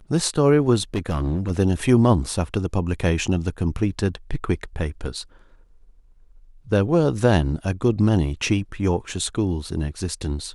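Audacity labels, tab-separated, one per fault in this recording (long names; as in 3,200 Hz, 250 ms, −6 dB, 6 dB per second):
0.940000	1.520000	clipping −19 dBFS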